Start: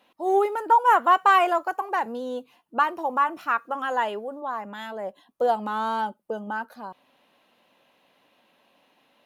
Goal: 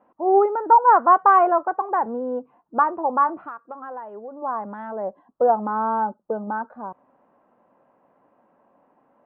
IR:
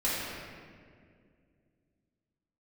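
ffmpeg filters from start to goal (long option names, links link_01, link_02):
-filter_complex "[0:a]lowpass=frequency=1300:width=0.5412,lowpass=frequency=1300:width=1.3066,asplit=3[link_01][link_02][link_03];[link_01]afade=type=out:start_time=3.46:duration=0.02[link_04];[link_02]acompressor=threshold=-37dB:ratio=10,afade=type=in:start_time=3.46:duration=0.02,afade=type=out:start_time=4.41:duration=0.02[link_05];[link_03]afade=type=in:start_time=4.41:duration=0.02[link_06];[link_04][link_05][link_06]amix=inputs=3:normalize=0,volume=4.5dB"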